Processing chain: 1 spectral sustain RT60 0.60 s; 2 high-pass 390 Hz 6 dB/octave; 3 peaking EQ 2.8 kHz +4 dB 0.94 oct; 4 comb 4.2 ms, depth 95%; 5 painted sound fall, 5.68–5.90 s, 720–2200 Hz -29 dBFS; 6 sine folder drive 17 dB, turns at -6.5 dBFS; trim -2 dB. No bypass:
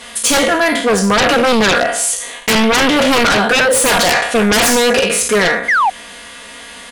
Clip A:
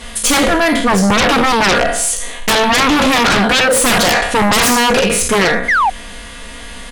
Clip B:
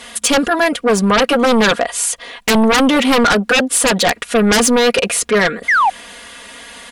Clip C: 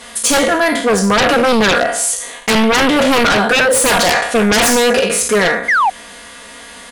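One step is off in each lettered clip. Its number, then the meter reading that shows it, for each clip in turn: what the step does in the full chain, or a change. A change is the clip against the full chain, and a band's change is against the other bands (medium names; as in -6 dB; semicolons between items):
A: 2, 125 Hz band +2.5 dB; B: 1, 250 Hz band +3.0 dB; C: 3, momentary loudness spread change -11 LU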